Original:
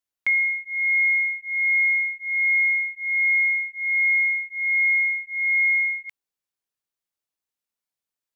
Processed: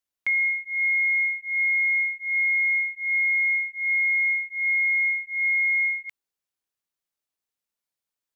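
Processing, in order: peak limiter -19 dBFS, peak gain reduction 3 dB

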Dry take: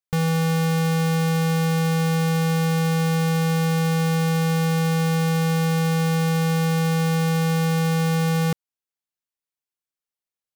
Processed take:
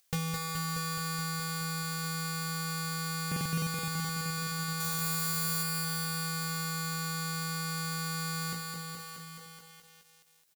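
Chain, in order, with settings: treble shelf 2.2 kHz +10 dB; feedback comb 57 Hz, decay 0.21 s, harmonics all, mix 100%; echo from a far wall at 160 m, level -29 dB; compression 16:1, threshold -30 dBFS, peak gain reduction 9 dB; 4.80–5.63 s: treble shelf 7.8 kHz +11 dB; upward compressor, threshold -55 dBFS; buffer glitch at 3.27 s, samples 2048, times 3; bit-crushed delay 212 ms, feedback 80%, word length 9-bit, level -3.5 dB

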